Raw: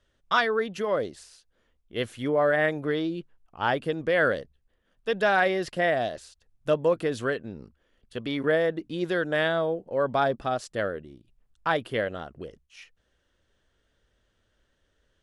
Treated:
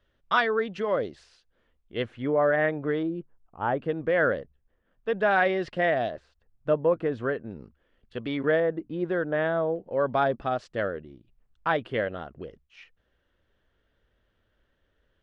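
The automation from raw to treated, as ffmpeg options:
-af "asetnsamples=n=441:p=0,asendcmd='2.02 lowpass f 2100;3.03 lowpass f 1200;3.79 lowpass f 2000;5.31 lowpass f 3200;6.11 lowpass f 1700;7.51 lowpass f 3100;8.6 lowpass f 1500;9.76 lowpass f 3100',lowpass=3600"

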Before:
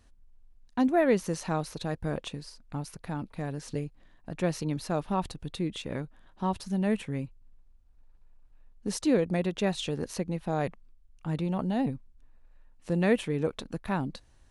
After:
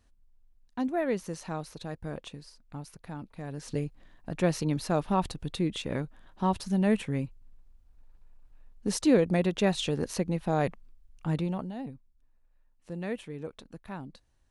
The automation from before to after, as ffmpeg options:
-af "volume=1.33,afade=t=in:st=3.43:d=0.41:silence=0.398107,afade=t=out:st=11.31:d=0.41:silence=0.237137"

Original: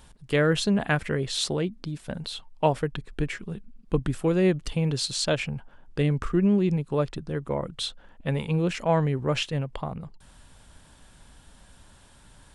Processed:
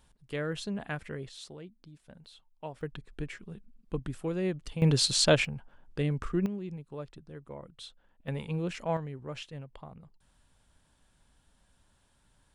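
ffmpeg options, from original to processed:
-af "asetnsamples=n=441:p=0,asendcmd='1.29 volume volume -19dB;2.81 volume volume -9.5dB;4.82 volume volume 2.5dB;5.45 volume volume -6dB;6.46 volume volume -15.5dB;8.28 volume volume -8dB;8.97 volume volume -14.5dB',volume=0.251"

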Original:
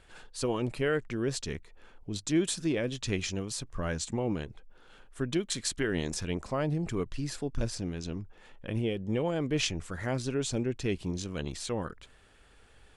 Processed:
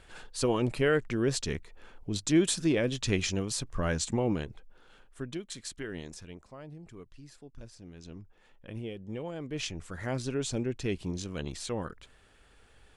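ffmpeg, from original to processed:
-af "volume=7.94,afade=t=out:st=4.15:d=1.24:silence=0.266073,afade=t=out:st=5.92:d=0.54:silence=0.421697,afade=t=in:st=7.77:d=0.44:silence=0.398107,afade=t=in:st=9.47:d=0.7:silence=0.446684"

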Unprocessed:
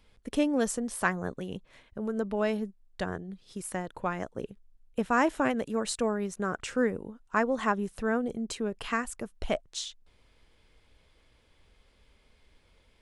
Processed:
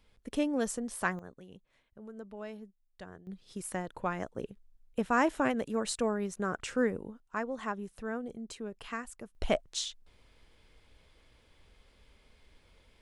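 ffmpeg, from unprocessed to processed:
-af "asetnsamples=n=441:p=0,asendcmd='1.19 volume volume -14.5dB;3.27 volume volume -2dB;7.2 volume volume -8.5dB;9.35 volume volume 1dB',volume=0.631"

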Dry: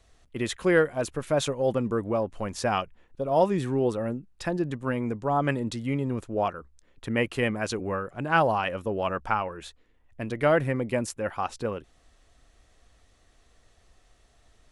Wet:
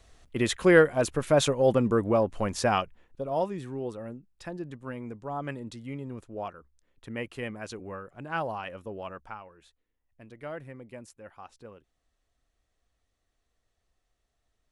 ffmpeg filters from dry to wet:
-af "volume=1.41,afade=t=out:st=2.44:d=1.1:silence=0.237137,afade=t=out:st=8.95:d=0.45:silence=0.421697"

